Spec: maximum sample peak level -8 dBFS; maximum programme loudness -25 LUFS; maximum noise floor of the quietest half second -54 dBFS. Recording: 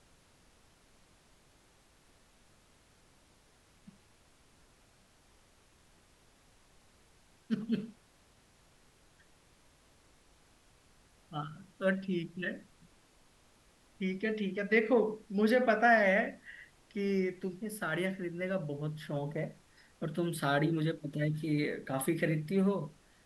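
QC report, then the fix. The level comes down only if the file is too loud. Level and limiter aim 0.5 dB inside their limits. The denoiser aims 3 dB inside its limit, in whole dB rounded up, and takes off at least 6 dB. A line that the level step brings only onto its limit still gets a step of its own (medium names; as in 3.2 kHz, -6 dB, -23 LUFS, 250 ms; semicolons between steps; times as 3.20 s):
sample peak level -14.5 dBFS: pass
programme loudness -33.0 LUFS: pass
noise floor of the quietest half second -65 dBFS: pass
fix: none needed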